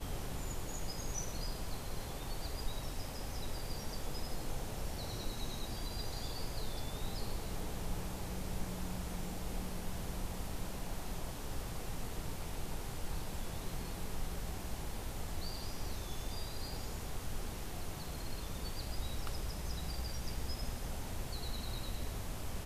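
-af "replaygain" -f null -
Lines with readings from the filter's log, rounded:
track_gain = +27.4 dB
track_peak = 0.041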